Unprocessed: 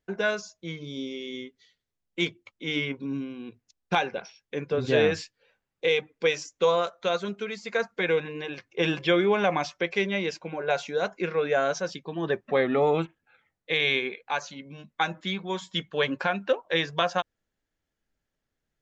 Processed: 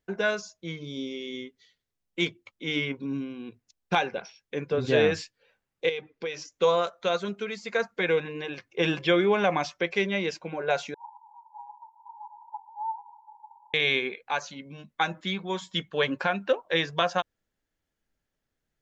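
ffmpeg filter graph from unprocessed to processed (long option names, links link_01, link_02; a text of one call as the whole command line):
ffmpeg -i in.wav -filter_complex "[0:a]asettb=1/sr,asplit=3[link_01][link_02][link_03];[link_01]atrim=end=5.894[link_04];[link_02]atrim=start=5.89:end=6.52,asetpts=PTS-STARTPTS,afade=type=in:duration=0.004:curve=qsin,afade=type=out:start_time=0.626:duration=0.004:curve=qsin,lowpass=frequency=5900:width=0.5412,lowpass=frequency=5900:width=1.3066,equalizer=frequency=370:width_type=o:width=0.24:gain=5,acompressor=threshold=-33dB:ratio=2.5:attack=3.2:release=140:knee=1:detection=peak[link_05];[link_03]atrim=start=6.516[link_06];[link_04][link_05]acrossfade=duration=0.004:curve1=hsin:curve2=qsin[link_07];[link_07][link_06]acrossfade=duration=0.004:curve1=qsin:curve2=hsin,asettb=1/sr,asplit=3[link_08][link_09][link_10];[link_08]atrim=end=10.944[link_11];[link_09]atrim=start=10.94:end=13.74,asetpts=PTS-STARTPTS,afade=type=in:duration=0.004:curve=qsin,afade=type=out:start_time=2.796:duration=0.004:curve=qsin,aeval=exprs='val(0)+0.5*0.0335*sgn(val(0))':channel_layout=same,asuperpass=centerf=900:order=12:qfactor=5.6[link_12];[link_10]atrim=start=13.736[link_13];[link_11][link_12]acrossfade=duration=0.004:curve1=hsin:curve2=qsin[link_14];[link_14][link_13]acrossfade=duration=0.004:curve1=qsin:curve2=hsin" out.wav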